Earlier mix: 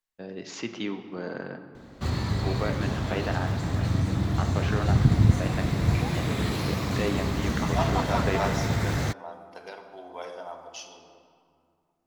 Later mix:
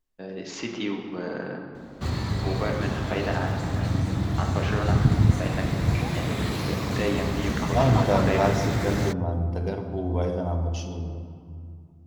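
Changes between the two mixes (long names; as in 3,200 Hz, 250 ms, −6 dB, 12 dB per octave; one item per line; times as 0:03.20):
first voice: send +7.0 dB
second voice: remove high-pass filter 920 Hz 12 dB per octave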